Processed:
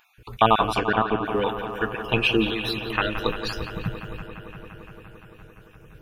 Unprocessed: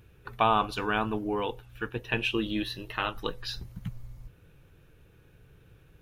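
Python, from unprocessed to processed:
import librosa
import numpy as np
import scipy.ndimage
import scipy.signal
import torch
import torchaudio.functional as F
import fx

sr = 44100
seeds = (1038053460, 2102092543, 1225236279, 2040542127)

y = fx.spec_dropout(x, sr, seeds[0], share_pct=38)
y = fx.env_lowpass_down(y, sr, base_hz=2900.0, full_db=-26.5, at=(0.74, 1.25))
y = fx.echo_bbd(y, sr, ms=172, stages=4096, feedback_pct=83, wet_db=-10.5)
y = y * librosa.db_to_amplitude(8.0)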